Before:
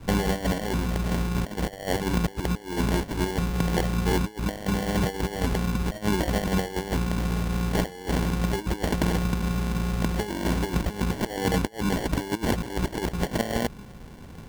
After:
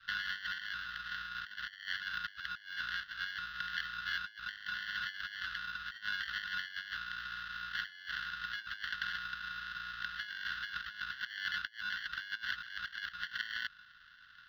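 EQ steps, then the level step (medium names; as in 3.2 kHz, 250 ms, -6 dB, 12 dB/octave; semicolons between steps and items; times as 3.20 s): elliptic high-pass 1.4 kHz, stop band 40 dB; distance through air 300 m; static phaser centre 2.3 kHz, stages 6; +5.0 dB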